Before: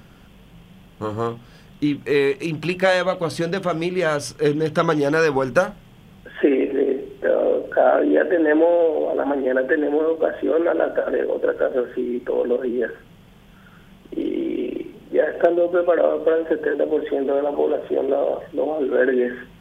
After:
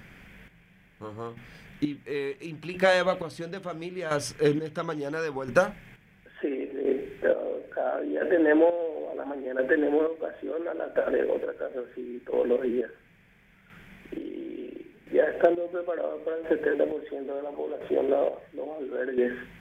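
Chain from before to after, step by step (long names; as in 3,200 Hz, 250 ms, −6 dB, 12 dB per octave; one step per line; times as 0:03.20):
noise in a band 1,500–2,500 Hz −51 dBFS
square-wave tremolo 0.73 Hz, depth 65%, duty 35%
level −4 dB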